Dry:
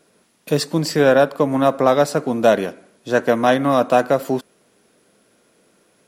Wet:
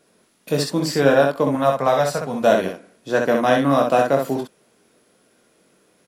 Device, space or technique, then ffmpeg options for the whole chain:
slapback doubling: -filter_complex "[0:a]asplit=3[link_01][link_02][link_03];[link_02]adelay=22,volume=-6dB[link_04];[link_03]adelay=64,volume=-4dB[link_05];[link_01][link_04][link_05]amix=inputs=3:normalize=0,asettb=1/sr,asplit=3[link_06][link_07][link_08];[link_06]atrim=end=1.554[link_09];[link_07]atrim=start=1.55:end=2.43,asetpts=PTS-STARTPTS,afade=type=in:duration=0.004:curve=qsin,afade=type=out:start_time=0.876:duration=0.004:curve=qsin,equalizer=frequency=320:width=2.5:gain=-13.5[link_10];[link_08]atrim=start=2.426[link_11];[link_09][link_10]acrossfade=duration=0.004:curve1=hsin:curve2=qsin[link_12];[link_12][link_11]acrossfade=duration=0.004:curve1=qsin:curve2=hsin,volume=-3dB"

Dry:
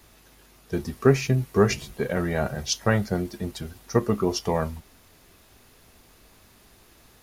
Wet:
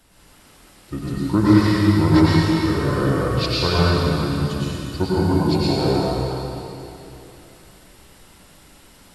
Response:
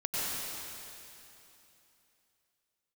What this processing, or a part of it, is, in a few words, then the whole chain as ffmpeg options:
slowed and reverbed: -filter_complex "[0:a]asetrate=34839,aresample=44100[link_01];[1:a]atrim=start_sample=2205[link_02];[link_01][link_02]afir=irnorm=-1:irlink=0,volume=-1dB"

